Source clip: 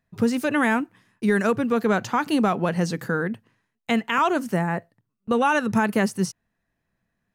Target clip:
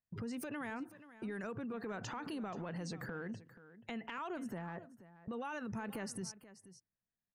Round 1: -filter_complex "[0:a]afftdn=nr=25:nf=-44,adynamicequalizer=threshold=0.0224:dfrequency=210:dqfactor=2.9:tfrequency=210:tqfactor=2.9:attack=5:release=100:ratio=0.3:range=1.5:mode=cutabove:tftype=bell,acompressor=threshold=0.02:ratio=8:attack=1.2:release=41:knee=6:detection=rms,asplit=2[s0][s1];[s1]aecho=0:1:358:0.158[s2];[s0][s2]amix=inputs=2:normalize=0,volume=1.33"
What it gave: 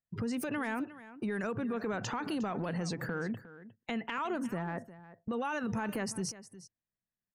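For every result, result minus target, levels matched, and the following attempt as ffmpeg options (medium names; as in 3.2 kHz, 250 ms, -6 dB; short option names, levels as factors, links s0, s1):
compression: peak gain reduction -7.5 dB; echo 123 ms early
-filter_complex "[0:a]afftdn=nr=25:nf=-44,adynamicequalizer=threshold=0.0224:dfrequency=210:dqfactor=2.9:tfrequency=210:tqfactor=2.9:attack=5:release=100:ratio=0.3:range=1.5:mode=cutabove:tftype=bell,acompressor=threshold=0.0075:ratio=8:attack=1.2:release=41:knee=6:detection=rms,asplit=2[s0][s1];[s1]aecho=0:1:358:0.158[s2];[s0][s2]amix=inputs=2:normalize=0,volume=1.33"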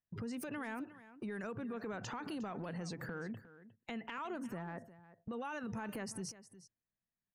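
echo 123 ms early
-filter_complex "[0:a]afftdn=nr=25:nf=-44,adynamicequalizer=threshold=0.0224:dfrequency=210:dqfactor=2.9:tfrequency=210:tqfactor=2.9:attack=5:release=100:ratio=0.3:range=1.5:mode=cutabove:tftype=bell,acompressor=threshold=0.0075:ratio=8:attack=1.2:release=41:knee=6:detection=rms,asplit=2[s0][s1];[s1]aecho=0:1:481:0.158[s2];[s0][s2]amix=inputs=2:normalize=0,volume=1.33"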